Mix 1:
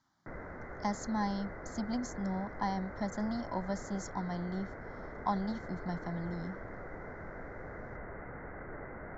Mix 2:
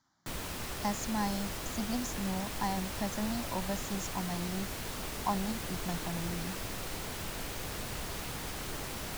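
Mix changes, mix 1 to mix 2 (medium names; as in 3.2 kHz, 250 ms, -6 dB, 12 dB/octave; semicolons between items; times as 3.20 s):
speech: add treble shelf 6.4 kHz +10 dB; background: remove rippled Chebyshev low-pass 2.1 kHz, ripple 6 dB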